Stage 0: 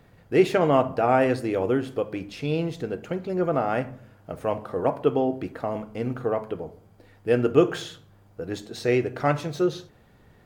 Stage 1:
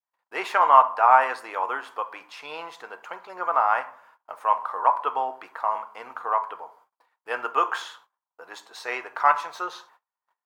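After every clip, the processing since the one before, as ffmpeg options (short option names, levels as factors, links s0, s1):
-af "agate=range=0.0178:threshold=0.00316:ratio=16:detection=peak,adynamicequalizer=threshold=0.0141:dfrequency=1300:dqfactor=0.85:tfrequency=1300:tqfactor=0.85:attack=5:release=100:ratio=0.375:range=3:mode=boostabove:tftype=bell,highpass=f=980:t=q:w=5.5,volume=0.668"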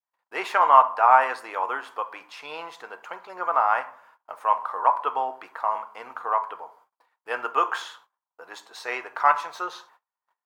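-af anull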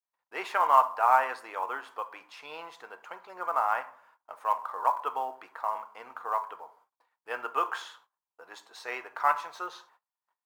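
-af "acrusher=bits=8:mode=log:mix=0:aa=0.000001,volume=0.501"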